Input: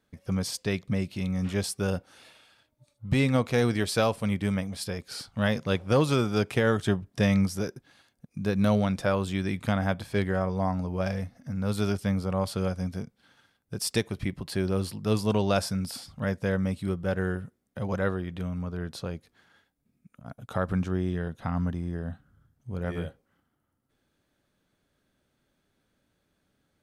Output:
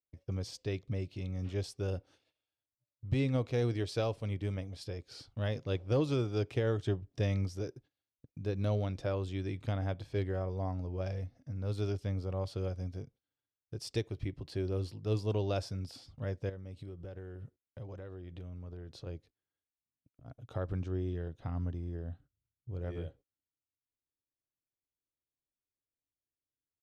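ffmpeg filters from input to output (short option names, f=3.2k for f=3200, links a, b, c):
-filter_complex "[0:a]asettb=1/sr,asplit=3[a][b][c];[a]atrim=end=16.494[d];[b]atrim=start=16.49:end=19.07,asetpts=PTS-STARTPTS,afade=t=in:d=0.004:c=qsin,afade=t=out:st=2.576:d=0.004:c=qsin,acompressor=threshold=-33dB:ratio=10:attack=3.2:release=140:knee=1:detection=peak[e];[c]atrim=start=19.066[f];[d][e]acrossfade=d=0.004:c1=hsin:c2=qsin[g];[g][f]acrossfade=d=0.004:c1=qsin:c2=hsin,agate=range=-23dB:threshold=-50dB:ratio=16:detection=peak,firequalizer=gain_entry='entry(120,0);entry(200,-14);entry(290,-1);entry(930,-10);entry(1500,-12);entry(2800,-7);entry(5700,-8);entry(10000,-19)':delay=0.05:min_phase=1,volume=-3.5dB"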